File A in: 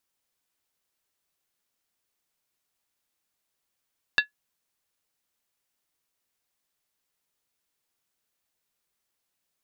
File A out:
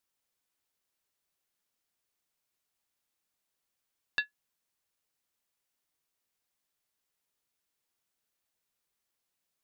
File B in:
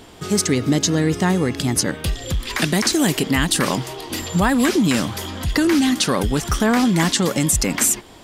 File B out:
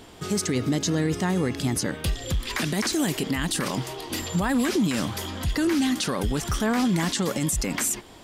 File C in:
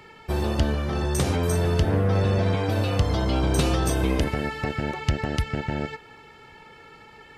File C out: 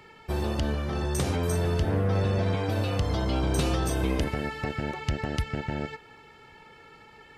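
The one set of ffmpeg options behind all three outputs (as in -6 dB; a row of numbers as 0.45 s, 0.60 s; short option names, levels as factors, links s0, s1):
-af "alimiter=limit=0.237:level=0:latency=1:release=29,volume=0.668"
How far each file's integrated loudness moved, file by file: -7.0 LU, -6.5 LU, -3.5 LU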